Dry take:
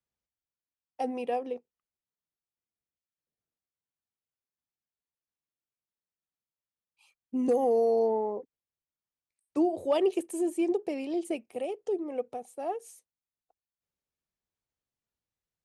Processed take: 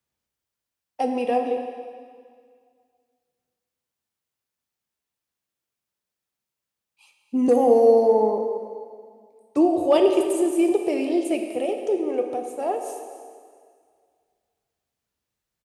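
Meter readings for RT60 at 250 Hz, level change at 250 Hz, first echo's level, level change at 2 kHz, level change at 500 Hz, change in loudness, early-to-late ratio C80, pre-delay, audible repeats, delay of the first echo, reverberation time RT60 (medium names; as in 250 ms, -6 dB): 2.0 s, +8.5 dB, -16.5 dB, +9.0 dB, +9.0 dB, +8.5 dB, 6.0 dB, 4 ms, 1, 271 ms, 2.0 s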